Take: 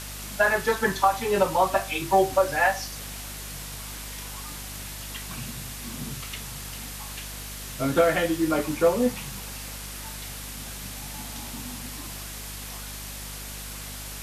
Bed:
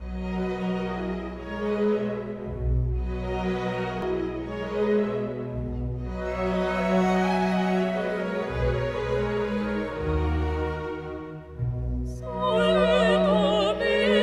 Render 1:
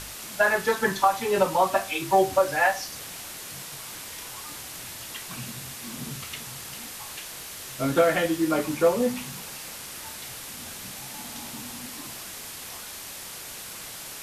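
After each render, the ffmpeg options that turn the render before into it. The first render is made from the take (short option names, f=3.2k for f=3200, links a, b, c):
-af "bandreject=f=50:t=h:w=4,bandreject=f=100:t=h:w=4,bandreject=f=150:t=h:w=4,bandreject=f=200:t=h:w=4,bandreject=f=250:t=h:w=4"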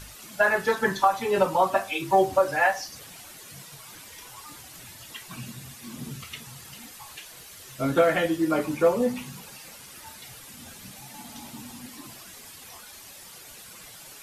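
-af "afftdn=nr=10:nf=-40"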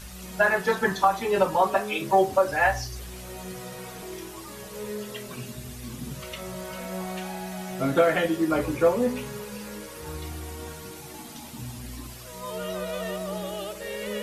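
-filter_complex "[1:a]volume=-11.5dB[a];[0:a][a]amix=inputs=2:normalize=0"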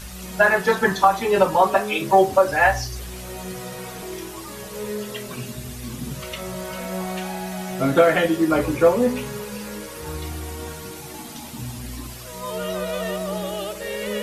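-af "volume=5dB"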